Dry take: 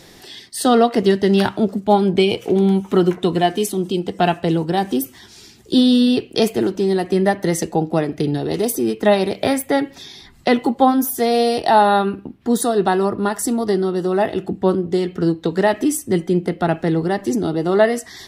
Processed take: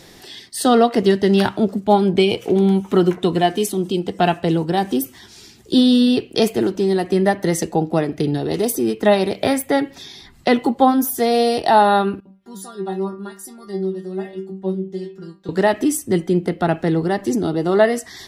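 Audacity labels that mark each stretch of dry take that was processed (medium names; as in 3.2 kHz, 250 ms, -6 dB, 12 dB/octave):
12.200000	15.490000	inharmonic resonator 190 Hz, decay 0.32 s, inharmonicity 0.002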